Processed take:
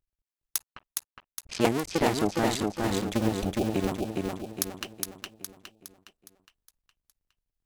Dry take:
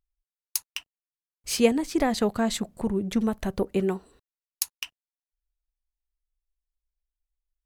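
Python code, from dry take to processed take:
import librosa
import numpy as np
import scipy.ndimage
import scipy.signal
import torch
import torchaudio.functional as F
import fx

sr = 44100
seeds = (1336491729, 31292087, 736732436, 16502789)

y = fx.cycle_switch(x, sr, every=2, mode='muted')
y = fx.env_lowpass(y, sr, base_hz=540.0, full_db=-25.0, at=(0.62, 2.68), fade=0.02)
y = fx.spec_erase(y, sr, start_s=3.18, length_s=0.54, low_hz=870.0, high_hz=2300.0)
y = fx.echo_feedback(y, sr, ms=413, feedback_pct=46, wet_db=-3)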